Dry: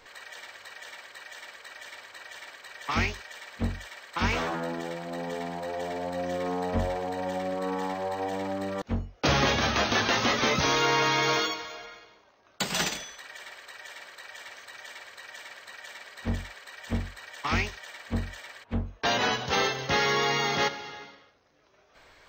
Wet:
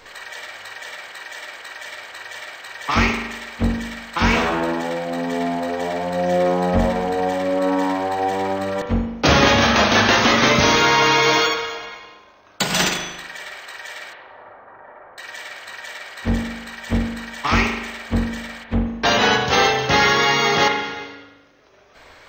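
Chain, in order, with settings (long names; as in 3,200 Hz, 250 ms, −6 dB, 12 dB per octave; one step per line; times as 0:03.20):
0:14.13–0:15.18: low-pass filter 1,200 Hz 24 dB per octave
spring reverb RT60 1 s, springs 39 ms, chirp 60 ms, DRR 3.5 dB
level +8.5 dB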